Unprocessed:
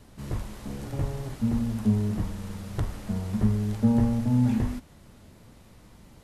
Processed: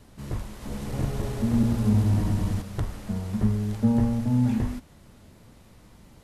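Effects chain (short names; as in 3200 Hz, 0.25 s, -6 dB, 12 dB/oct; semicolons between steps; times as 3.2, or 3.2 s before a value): 0.51–2.62 regenerating reverse delay 0.102 s, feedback 78%, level -1 dB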